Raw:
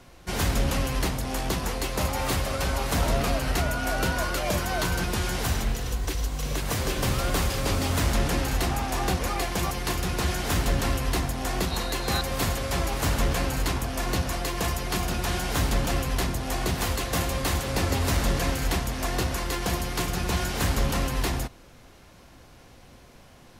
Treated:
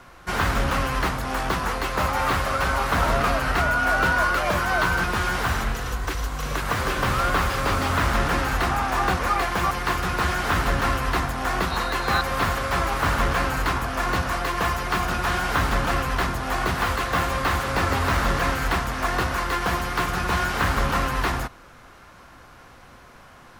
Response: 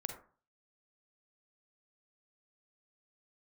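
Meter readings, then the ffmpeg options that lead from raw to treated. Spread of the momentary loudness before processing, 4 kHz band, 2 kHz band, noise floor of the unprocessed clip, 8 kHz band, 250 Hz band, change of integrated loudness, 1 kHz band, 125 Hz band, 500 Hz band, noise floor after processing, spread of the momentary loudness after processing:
3 LU, +0.5 dB, +8.5 dB, −51 dBFS, −3.5 dB, +0.5 dB, +3.5 dB, +8.5 dB, 0.0 dB, +2.5 dB, −48 dBFS, 4 LU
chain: -filter_complex "[0:a]acrossover=split=4900[link_01][link_02];[link_01]equalizer=frequency=1300:width_type=o:width=1.3:gain=12[link_03];[link_02]aeval=exprs='0.015*(abs(mod(val(0)/0.015+3,4)-2)-1)':channel_layout=same[link_04];[link_03][link_04]amix=inputs=2:normalize=0"

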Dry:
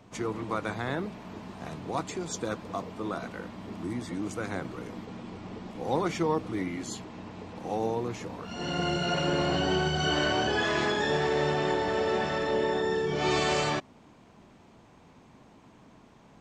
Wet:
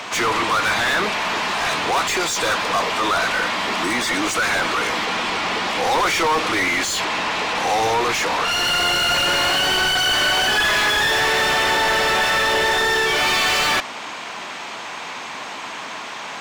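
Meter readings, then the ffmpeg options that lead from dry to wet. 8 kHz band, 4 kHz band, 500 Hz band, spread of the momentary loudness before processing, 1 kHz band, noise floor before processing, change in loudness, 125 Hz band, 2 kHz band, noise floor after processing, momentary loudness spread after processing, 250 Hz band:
+17.0 dB, +16.5 dB, +5.0 dB, 14 LU, +13.0 dB, −56 dBFS, +12.0 dB, −1.0 dB, +16.5 dB, −32 dBFS, 14 LU, +2.5 dB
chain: -filter_complex "[0:a]tiltshelf=frequency=800:gain=-10,asplit=2[link_01][link_02];[link_02]highpass=frequency=720:poles=1,volume=35dB,asoftclip=type=tanh:threshold=-10.5dB[link_03];[link_01][link_03]amix=inputs=2:normalize=0,lowpass=frequency=3000:poles=1,volume=-6dB"

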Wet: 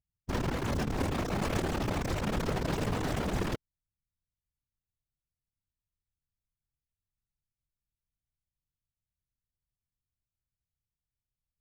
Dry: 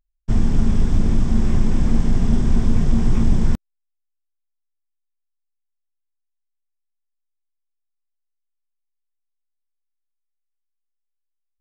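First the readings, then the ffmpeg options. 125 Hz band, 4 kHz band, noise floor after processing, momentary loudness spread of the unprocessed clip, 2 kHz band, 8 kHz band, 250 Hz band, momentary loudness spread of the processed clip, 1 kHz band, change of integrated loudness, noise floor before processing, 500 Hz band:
−13.0 dB, +0.5 dB, below −85 dBFS, 3 LU, +2.0 dB, can't be measured, −12.0 dB, 3 LU, +1.5 dB, −11.5 dB, −76 dBFS, −1.0 dB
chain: -af "aeval=exprs='(mod(3.98*val(0)+1,2)-1)/3.98':channel_layout=same,lowpass=frequency=3400:poles=1,afftfilt=real='hypot(re,im)*cos(2*PI*random(0))':imag='hypot(re,im)*sin(2*PI*random(1))':win_size=512:overlap=0.75,volume=-8dB"

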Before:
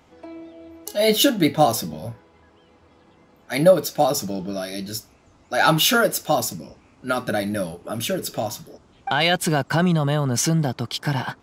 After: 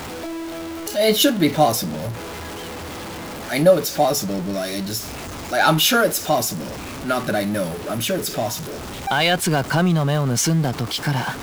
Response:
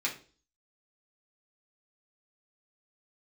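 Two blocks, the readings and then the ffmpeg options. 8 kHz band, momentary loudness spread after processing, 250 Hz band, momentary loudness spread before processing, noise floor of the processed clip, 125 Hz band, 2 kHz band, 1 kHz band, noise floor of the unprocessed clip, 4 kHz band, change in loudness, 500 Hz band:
+2.5 dB, 15 LU, +2.0 dB, 19 LU, −32 dBFS, +2.0 dB, +1.5 dB, +1.5 dB, −55 dBFS, +1.5 dB, +1.0 dB, +1.5 dB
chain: -af "aeval=exprs='val(0)+0.5*0.0473*sgn(val(0))':channel_layout=same"

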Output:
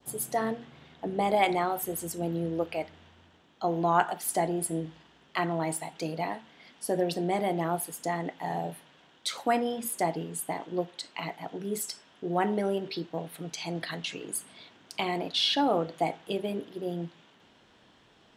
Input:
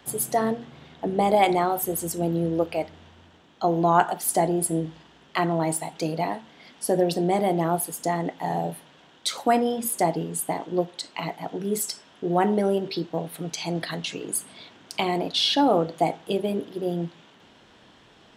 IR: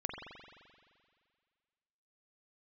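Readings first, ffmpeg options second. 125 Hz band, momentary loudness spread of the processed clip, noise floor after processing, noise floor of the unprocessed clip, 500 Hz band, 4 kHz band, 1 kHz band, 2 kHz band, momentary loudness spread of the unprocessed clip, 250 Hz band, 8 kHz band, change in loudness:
−6.5 dB, 12 LU, −61 dBFS, −55 dBFS, −6.0 dB, −4.0 dB, −5.5 dB, −2.5 dB, 12 LU, −6.5 dB, −6.0 dB, −5.5 dB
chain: -af "adynamicequalizer=threshold=0.0141:dfrequency=2100:dqfactor=0.78:tfrequency=2100:tqfactor=0.78:attack=5:release=100:ratio=0.375:range=2.5:mode=boostabove:tftype=bell,volume=-6.5dB"

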